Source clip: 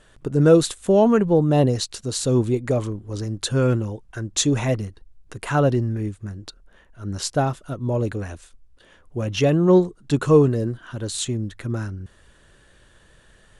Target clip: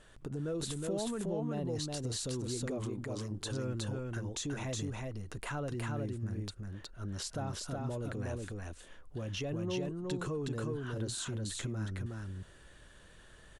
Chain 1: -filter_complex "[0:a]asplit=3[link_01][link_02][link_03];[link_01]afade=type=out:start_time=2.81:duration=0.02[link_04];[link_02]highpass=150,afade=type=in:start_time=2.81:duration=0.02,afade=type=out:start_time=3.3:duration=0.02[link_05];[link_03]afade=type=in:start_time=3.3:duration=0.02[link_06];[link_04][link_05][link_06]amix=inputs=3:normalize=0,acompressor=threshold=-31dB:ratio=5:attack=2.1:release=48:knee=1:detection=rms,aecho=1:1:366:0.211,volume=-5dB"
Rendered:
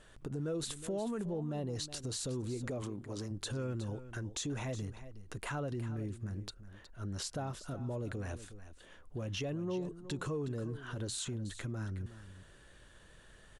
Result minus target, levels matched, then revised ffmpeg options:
echo-to-direct −11 dB
-filter_complex "[0:a]asplit=3[link_01][link_02][link_03];[link_01]afade=type=out:start_time=2.81:duration=0.02[link_04];[link_02]highpass=150,afade=type=in:start_time=2.81:duration=0.02,afade=type=out:start_time=3.3:duration=0.02[link_05];[link_03]afade=type=in:start_time=3.3:duration=0.02[link_06];[link_04][link_05][link_06]amix=inputs=3:normalize=0,acompressor=threshold=-31dB:ratio=5:attack=2.1:release=48:knee=1:detection=rms,aecho=1:1:366:0.75,volume=-5dB"

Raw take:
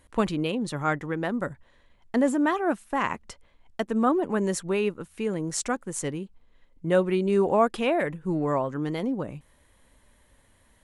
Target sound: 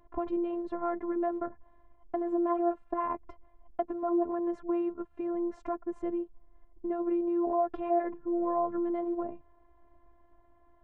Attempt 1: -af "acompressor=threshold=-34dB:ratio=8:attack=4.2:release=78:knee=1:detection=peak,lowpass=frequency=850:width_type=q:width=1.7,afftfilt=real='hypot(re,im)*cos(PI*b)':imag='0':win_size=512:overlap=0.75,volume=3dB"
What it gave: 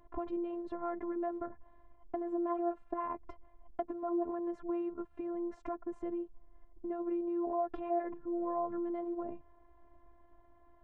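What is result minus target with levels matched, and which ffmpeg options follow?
downward compressor: peak gain reduction +5.5 dB
-af "acompressor=threshold=-27.5dB:ratio=8:attack=4.2:release=78:knee=1:detection=peak,lowpass=frequency=850:width_type=q:width=1.7,afftfilt=real='hypot(re,im)*cos(PI*b)':imag='0':win_size=512:overlap=0.75,volume=3dB"

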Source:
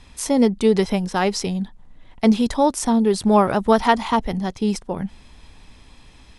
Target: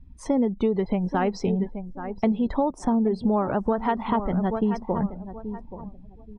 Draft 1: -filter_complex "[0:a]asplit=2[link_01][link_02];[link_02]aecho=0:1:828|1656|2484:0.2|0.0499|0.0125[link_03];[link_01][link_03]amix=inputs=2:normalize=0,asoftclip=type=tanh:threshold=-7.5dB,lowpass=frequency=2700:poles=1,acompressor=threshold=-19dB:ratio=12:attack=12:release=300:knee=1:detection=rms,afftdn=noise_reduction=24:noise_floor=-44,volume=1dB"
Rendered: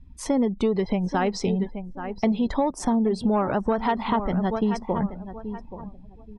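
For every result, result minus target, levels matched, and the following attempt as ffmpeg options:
soft clipping: distortion +11 dB; 2,000 Hz band +2.5 dB
-filter_complex "[0:a]asplit=2[link_01][link_02];[link_02]aecho=0:1:828|1656|2484:0.2|0.0499|0.0125[link_03];[link_01][link_03]amix=inputs=2:normalize=0,asoftclip=type=tanh:threshold=-1dB,lowpass=frequency=2700:poles=1,acompressor=threshold=-19dB:ratio=12:attack=12:release=300:knee=1:detection=rms,afftdn=noise_reduction=24:noise_floor=-44,volume=1dB"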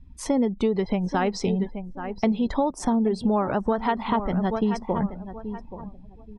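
2,000 Hz band +2.5 dB
-filter_complex "[0:a]asplit=2[link_01][link_02];[link_02]aecho=0:1:828|1656|2484:0.2|0.0499|0.0125[link_03];[link_01][link_03]amix=inputs=2:normalize=0,asoftclip=type=tanh:threshold=-1dB,lowpass=frequency=1300:poles=1,acompressor=threshold=-19dB:ratio=12:attack=12:release=300:knee=1:detection=rms,afftdn=noise_reduction=24:noise_floor=-44,volume=1dB"

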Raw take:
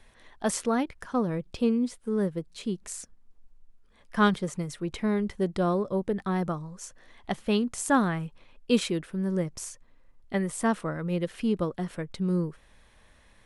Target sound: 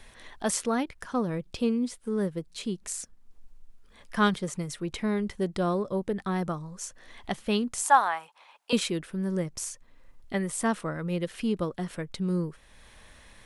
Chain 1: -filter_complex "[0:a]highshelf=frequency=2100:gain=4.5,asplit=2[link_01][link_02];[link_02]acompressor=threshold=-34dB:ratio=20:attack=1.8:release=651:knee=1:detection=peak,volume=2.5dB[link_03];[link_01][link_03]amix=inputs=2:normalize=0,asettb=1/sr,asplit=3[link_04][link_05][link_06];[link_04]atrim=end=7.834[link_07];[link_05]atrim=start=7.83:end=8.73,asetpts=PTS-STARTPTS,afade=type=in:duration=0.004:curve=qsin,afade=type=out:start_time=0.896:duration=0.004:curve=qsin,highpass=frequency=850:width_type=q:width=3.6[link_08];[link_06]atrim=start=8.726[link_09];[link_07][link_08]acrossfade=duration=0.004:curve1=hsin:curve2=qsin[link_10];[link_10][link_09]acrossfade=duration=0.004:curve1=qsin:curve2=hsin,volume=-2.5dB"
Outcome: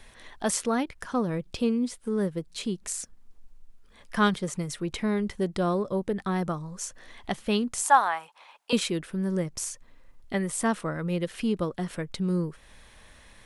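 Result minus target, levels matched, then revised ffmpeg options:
downward compressor: peak gain reduction −7.5 dB
-filter_complex "[0:a]highshelf=frequency=2100:gain=4.5,asplit=2[link_01][link_02];[link_02]acompressor=threshold=-42dB:ratio=20:attack=1.8:release=651:knee=1:detection=peak,volume=2.5dB[link_03];[link_01][link_03]amix=inputs=2:normalize=0,asettb=1/sr,asplit=3[link_04][link_05][link_06];[link_04]atrim=end=7.834[link_07];[link_05]atrim=start=7.83:end=8.73,asetpts=PTS-STARTPTS,afade=type=in:duration=0.004:curve=qsin,afade=type=out:start_time=0.896:duration=0.004:curve=qsin,highpass=frequency=850:width_type=q:width=3.6[link_08];[link_06]atrim=start=8.726[link_09];[link_07][link_08]acrossfade=duration=0.004:curve1=hsin:curve2=qsin[link_10];[link_10][link_09]acrossfade=duration=0.004:curve1=qsin:curve2=hsin,volume=-2.5dB"

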